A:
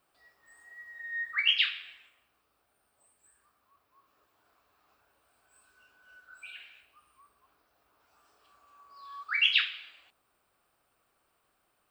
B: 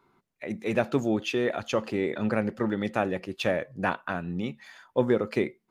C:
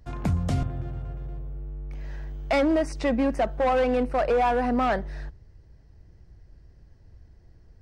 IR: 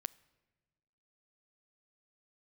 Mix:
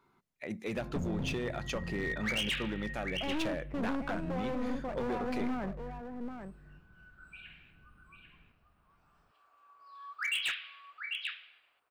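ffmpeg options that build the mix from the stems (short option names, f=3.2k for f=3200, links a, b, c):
-filter_complex "[0:a]acrossover=split=310 3000:gain=0.251 1 0.251[a][b][c];[a][b][c]amix=inputs=3:normalize=0,adelay=900,volume=-2dB,asplit=2[d][e];[e]volume=-7.5dB[f];[1:a]acompressor=threshold=-28dB:ratio=2.5,volume=-3dB[g];[2:a]firequalizer=gain_entry='entry(110,0);entry(170,14);entry(660,-1);entry(2200,-3);entry(3600,-29)':delay=0.05:min_phase=1,aeval=exprs='clip(val(0),-1,0.0631)':c=same,adelay=700,volume=-13dB,asplit=2[h][i];[i]volume=-8.5dB[j];[f][j]amix=inputs=2:normalize=0,aecho=0:1:793:1[k];[d][g][h][k]amix=inputs=4:normalize=0,equalizer=f=410:t=o:w=2:g=-3,asoftclip=type=hard:threshold=-28.5dB"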